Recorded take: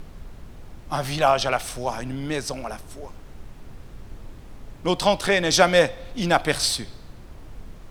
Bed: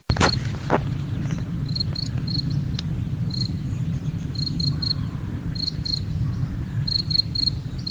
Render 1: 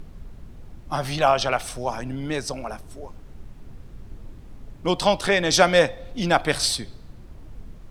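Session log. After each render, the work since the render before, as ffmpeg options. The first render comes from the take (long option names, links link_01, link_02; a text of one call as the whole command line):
ffmpeg -i in.wav -af "afftdn=noise_reduction=6:noise_floor=-43" out.wav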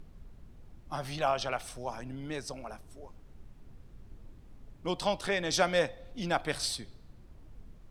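ffmpeg -i in.wav -af "volume=-10.5dB" out.wav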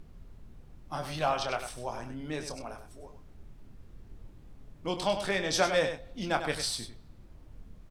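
ffmpeg -i in.wav -filter_complex "[0:a]asplit=2[link_01][link_02];[link_02]adelay=26,volume=-8dB[link_03];[link_01][link_03]amix=inputs=2:normalize=0,aecho=1:1:99:0.355" out.wav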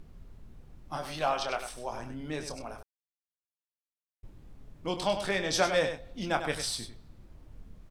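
ffmpeg -i in.wav -filter_complex "[0:a]asettb=1/sr,asplit=3[link_01][link_02][link_03];[link_01]atrim=end=0.974[link_04];[link_02]atrim=start=0.97:end=1.92,asetpts=PTS-STARTPTS,afade=type=in:duration=0.004:curve=qsin,afade=type=out:start_time=0.946:duration=0.004:curve=qsin,equalizer=frequency=97:width_type=o:width=1.1:gain=-12.5[link_05];[link_03]atrim=start=1.916[link_06];[link_04][link_05]acrossfade=duration=0.004:curve1=hsin:curve2=qsin[link_07];[link_07][link_06]acrossfade=duration=0.004:curve1=qsin:curve2=hsin,asettb=1/sr,asplit=3[link_08][link_09][link_10];[link_08]atrim=end=6.264[link_11];[link_09]atrim=start=6.26:end=6.68,asetpts=PTS-STARTPTS,afade=type=in:duration=0.004:curve=qsin,afade=type=out:start_time=0.416:duration=0.004:curve=qsin,bandreject=frequency=4400:width=7.1[link_12];[link_10]atrim=start=6.676[link_13];[link_11][link_12]acrossfade=duration=0.004:curve1=hsin:curve2=qsin[link_14];[link_14][link_13]acrossfade=duration=0.004:curve1=qsin:curve2=hsin,asplit=3[link_15][link_16][link_17];[link_15]atrim=end=2.83,asetpts=PTS-STARTPTS,afade=type=out:start_time=2.826:duration=0.004:curve=hsin[link_18];[link_16]atrim=start=2.83:end=4.23,asetpts=PTS-STARTPTS,volume=0[link_19];[link_17]atrim=start=4.23,asetpts=PTS-STARTPTS,afade=type=in:duration=0.004:curve=hsin[link_20];[link_18][link_19][link_20]concat=n=3:v=0:a=1" out.wav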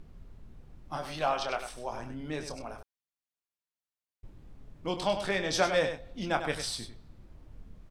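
ffmpeg -i in.wav -af "highshelf=frequency=7300:gain=-5.5" out.wav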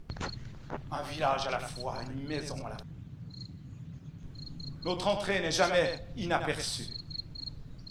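ffmpeg -i in.wav -i bed.wav -filter_complex "[1:a]volume=-19.5dB[link_01];[0:a][link_01]amix=inputs=2:normalize=0" out.wav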